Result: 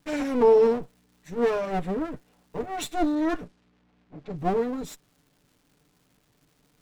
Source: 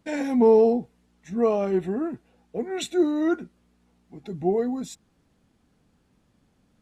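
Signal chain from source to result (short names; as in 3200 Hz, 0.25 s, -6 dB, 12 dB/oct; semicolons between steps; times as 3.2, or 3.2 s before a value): minimum comb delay 6.8 ms; crackle 440/s -54 dBFS; 3.15–4.38 low-pass opened by the level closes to 2700 Hz, open at -24.5 dBFS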